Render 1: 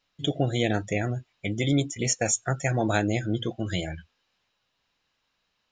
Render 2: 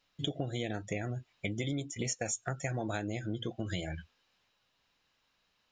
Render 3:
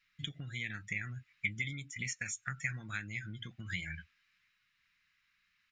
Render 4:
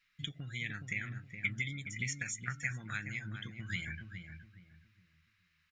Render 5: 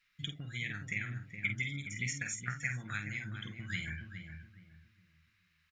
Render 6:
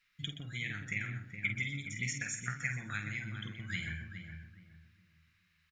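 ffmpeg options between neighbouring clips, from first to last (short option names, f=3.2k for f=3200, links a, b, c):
-af "acompressor=threshold=-32dB:ratio=6"
-af "firequalizer=gain_entry='entry(180,0);entry(340,-15);entry(670,-22);entry(1200,3);entry(2100,14);entry(3000,2);entry(7400,0)':delay=0.05:min_phase=1,volume=-5.5dB"
-filter_complex "[0:a]asplit=2[a][b];[b]adelay=418,lowpass=f=1.1k:p=1,volume=-5dB,asplit=2[c][d];[d]adelay=418,lowpass=f=1.1k:p=1,volume=0.32,asplit=2[e][f];[f]adelay=418,lowpass=f=1.1k:p=1,volume=0.32,asplit=2[g][h];[h]adelay=418,lowpass=f=1.1k:p=1,volume=0.32[i];[a][c][e][g][i]amix=inputs=5:normalize=0"
-filter_complex "[0:a]asplit=2[a][b];[b]adelay=49,volume=-7.5dB[c];[a][c]amix=inputs=2:normalize=0"
-af "aecho=1:1:124:0.251"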